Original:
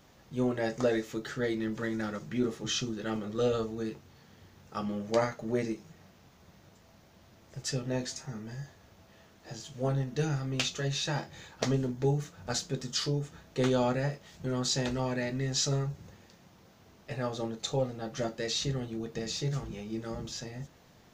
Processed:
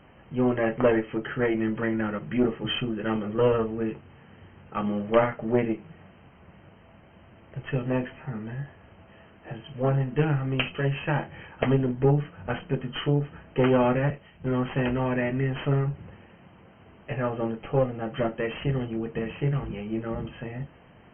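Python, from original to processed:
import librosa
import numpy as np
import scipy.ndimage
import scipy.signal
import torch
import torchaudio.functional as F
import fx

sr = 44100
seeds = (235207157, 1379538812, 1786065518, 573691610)

y = fx.cheby_harmonics(x, sr, harmonics=(6,), levels_db=(-21,), full_scale_db=-11.5)
y = fx.brickwall_lowpass(y, sr, high_hz=3200.0)
y = fx.band_widen(y, sr, depth_pct=40, at=(14.1, 14.7))
y = y * librosa.db_to_amplitude(6.5)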